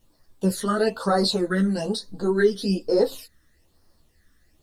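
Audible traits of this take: phasing stages 12, 1.1 Hz, lowest notch 790–2700 Hz; a quantiser's noise floor 12-bit, dither none; a shimmering, thickened sound

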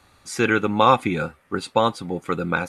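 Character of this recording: noise floor -59 dBFS; spectral tilt -4.0 dB/oct

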